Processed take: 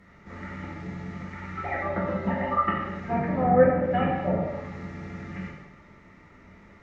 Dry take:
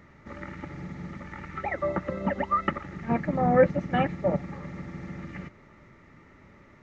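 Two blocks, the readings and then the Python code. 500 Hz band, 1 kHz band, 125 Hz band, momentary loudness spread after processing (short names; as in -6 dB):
+1.5 dB, +2.5 dB, +1.0 dB, 18 LU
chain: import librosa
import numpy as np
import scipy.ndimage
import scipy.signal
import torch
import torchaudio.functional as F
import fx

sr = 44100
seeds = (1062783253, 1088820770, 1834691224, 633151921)

y = fx.env_lowpass_down(x, sr, base_hz=1800.0, full_db=-20.0)
y = fx.rev_gated(y, sr, seeds[0], gate_ms=330, shape='falling', drr_db=-6.5)
y = y * librosa.db_to_amplitude(-5.0)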